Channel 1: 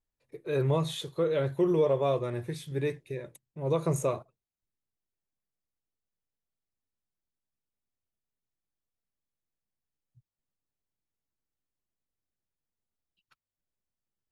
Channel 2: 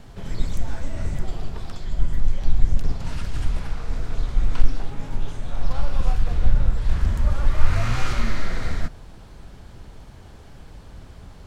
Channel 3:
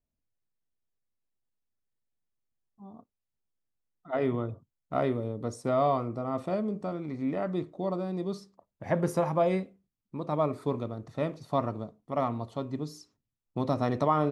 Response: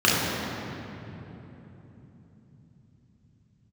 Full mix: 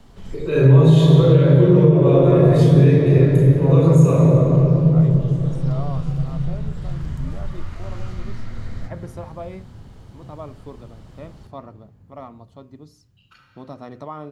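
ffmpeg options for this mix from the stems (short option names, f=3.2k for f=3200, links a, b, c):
-filter_complex "[0:a]acrossover=split=260[a][b];[b]acompressor=threshold=-45dB:ratio=1.5[c];[a][c]amix=inputs=2:normalize=0,volume=1.5dB,asplit=3[d][e][f];[e]volume=-3.5dB[g];[1:a]acrossover=split=230|1400[h][i][j];[h]acompressor=threshold=-20dB:ratio=4[k];[i]acompressor=threshold=-45dB:ratio=4[l];[j]acompressor=threshold=-47dB:ratio=4[m];[k][l][m]amix=inputs=3:normalize=0,volume=-4.5dB,asplit=2[n][o];[o]volume=-23.5dB[p];[2:a]volume=-8.5dB[q];[f]apad=whole_len=505745[r];[n][r]sidechaincompress=threshold=-41dB:ratio=8:attack=16:release=1170[s];[3:a]atrim=start_sample=2205[t];[g][p]amix=inputs=2:normalize=0[u];[u][t]afir=irnorm=-1:irlink=0[v];[d][s][q][v]amix=inputs=4:normalize=0,bandreject=f=60:t=h:w=6,bandreject=f=120:t=h:w=6,alimiter=limit=-3dB:level=0:latency=1:release=319"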